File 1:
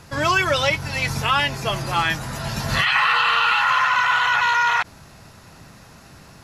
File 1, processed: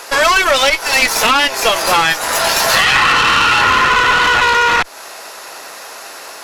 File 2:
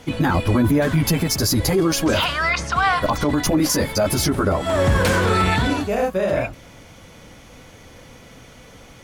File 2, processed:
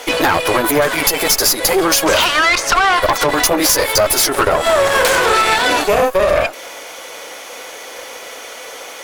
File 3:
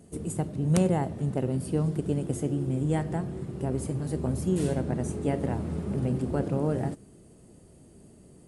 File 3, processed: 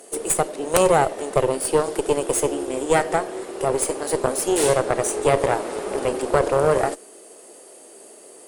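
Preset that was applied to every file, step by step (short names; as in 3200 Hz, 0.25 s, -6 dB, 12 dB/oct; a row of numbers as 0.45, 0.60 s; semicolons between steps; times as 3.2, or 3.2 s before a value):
HPF 430 Hz 24 dB/oct; high shelf 9800 Hz +6.5 dB; compressor 5:1, threshold -26 dBFS; tube stage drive 27 dB, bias 0.8; normalise peaks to -1.5 dBFS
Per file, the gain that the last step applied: +21.5, +20.0, +20.5 dB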